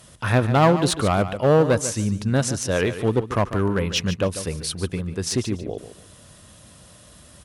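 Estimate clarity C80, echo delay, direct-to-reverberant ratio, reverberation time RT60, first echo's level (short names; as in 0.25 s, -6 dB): none, 0.145 s, none, none, -12.0 dB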